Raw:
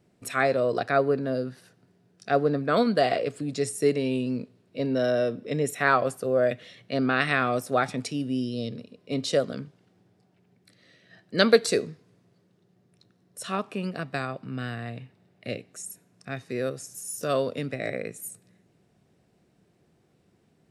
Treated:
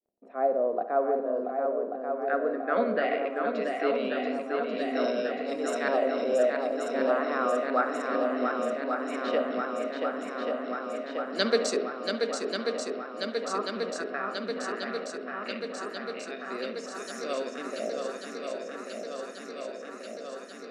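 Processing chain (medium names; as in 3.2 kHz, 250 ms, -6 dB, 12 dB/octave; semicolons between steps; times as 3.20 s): expander -53 dBFS; elliptic high-pass 210 Hz, stop band 40 dB; crackle 19 per s -47 dBFS; LFO low-pass saw up 0.17 Hz 610–7000 Hz; shuffle delay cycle 1137 ms, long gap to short 1.5:1, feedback 75%, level -5 dB; on a send at -10 dB: reverberation RT60 1.0 s, pre-delay 47 ms; on the sum: trim -7 dB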